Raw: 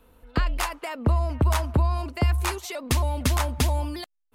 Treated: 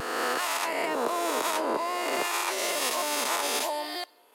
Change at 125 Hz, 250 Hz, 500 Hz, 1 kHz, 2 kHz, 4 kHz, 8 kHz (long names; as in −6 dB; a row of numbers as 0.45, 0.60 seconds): below −30 dB, −5.5 dB, +3.0 dB, +3.0 dB, +3.5 dB, +4.0 dB, +4.0 dB